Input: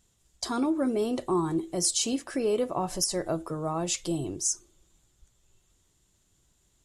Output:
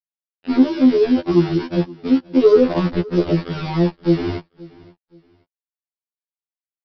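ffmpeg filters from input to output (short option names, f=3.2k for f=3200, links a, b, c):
-filter_complex "[0:a]afwtdn=0.01,lowpass=f=2.6k:w=0.5412,lowpass=f=2.6k:w=1.3066,lowshelf=f=640:t=q:w=1.5:g=9.5,aresample=11025,aeval=exprs='val(0)*gte(abs(val(0)),0.0473)':c=same,aresample=44100,aphaser=in_gain=1:out_gain=1:delay=1.4:decay=0.31:speed=0.35:type=sinusoidal,asoftclip=type=tanh:threshold=-9dB,asplit=2[a][b];[b]aecho=0:1:525|1050:0.075|0.0232[c];[a][c]amix=inputs=2:normalize=0,afftfilt=real='re*2*eq(mod(b,4),0)':imag='im*2*eq(mod(b,4),0)':win_size=2048:overlap=0.75,volume=4.5dB"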